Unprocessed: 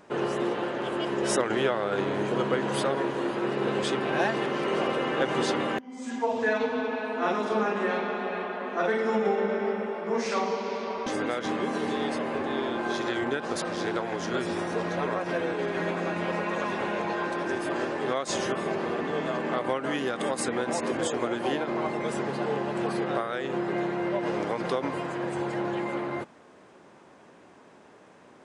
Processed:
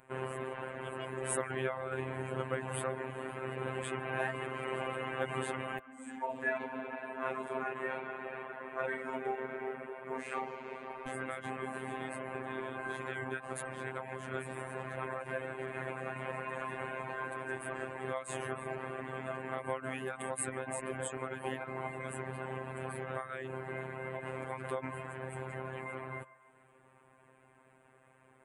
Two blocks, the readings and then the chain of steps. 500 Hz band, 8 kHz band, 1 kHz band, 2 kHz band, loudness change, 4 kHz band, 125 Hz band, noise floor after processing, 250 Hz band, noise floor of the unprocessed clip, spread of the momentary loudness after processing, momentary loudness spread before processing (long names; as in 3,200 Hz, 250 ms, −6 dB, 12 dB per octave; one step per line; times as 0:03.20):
−11.5 dB, −6.0 dB, −9.5 dB, −7.5 dB, −10.5 dB, −15.5 dB, −5.5 dB, −64 dBFS, −15.0 dB, −53 dBFS, 6 LU, 4 LU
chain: floating-point word with a short mantissa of 8 bits
drawn EQ curve 110 Hz 0 dB, 240 Hz −11 dB, 2,400 Hz −4 dB, 5,500 Hz −29 dB, 8,400 Hz 0 dB
reverb reduction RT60 0.61 s
phases set to zero 131 Hz
on a send: feedback echo with a band-pass in the loop 147 ms, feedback 74%, band-pass 1,100 Hz, level −17 dB
on the sum: level +1 dB